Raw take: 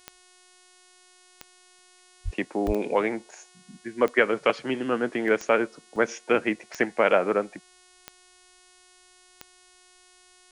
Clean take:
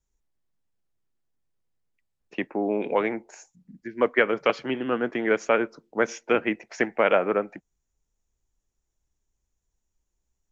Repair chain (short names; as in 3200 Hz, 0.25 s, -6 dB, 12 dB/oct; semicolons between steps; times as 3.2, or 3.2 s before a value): de-click; de-hum 364.3 Hz, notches 29; de-plosive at 2.24/2.66; interpolate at 1.43/1.79/2.67/3.31/5.28/5.96/6.59, 1.7 ms